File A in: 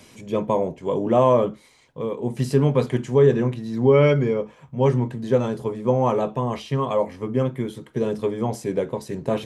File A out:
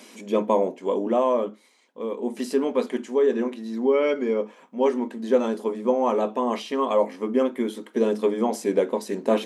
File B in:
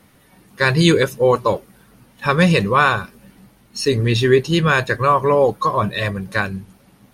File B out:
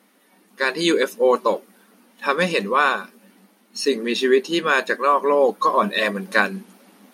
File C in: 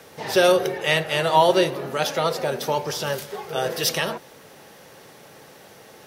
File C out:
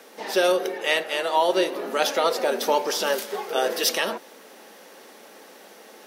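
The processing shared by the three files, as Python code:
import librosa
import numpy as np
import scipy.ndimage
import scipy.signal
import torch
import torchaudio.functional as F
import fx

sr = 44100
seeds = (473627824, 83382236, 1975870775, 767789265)

y = fx.rider(x, sr, range_db=4, speed_s=0.5)
y = fx.brickwall_highpass(y, sr, low_hz=190.0)
y = y * 10.0 ** (-1.0 / 20.0)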